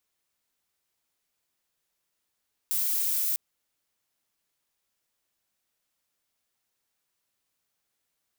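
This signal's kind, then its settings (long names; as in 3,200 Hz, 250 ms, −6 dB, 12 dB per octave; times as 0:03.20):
noise violet, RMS −27 dBFS 0.65 s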